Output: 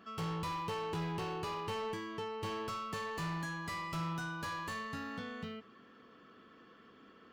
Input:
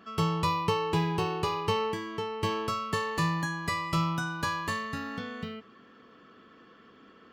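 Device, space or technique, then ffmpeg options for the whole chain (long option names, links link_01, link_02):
saturation between pre-emphasis and de-emphasis: -af "highshelf=frequency=2100:gain=10,asoftclip=type=tanh:threshold=-29dB,highshelf=frequency=2100:gain=-10,volume=-4dB"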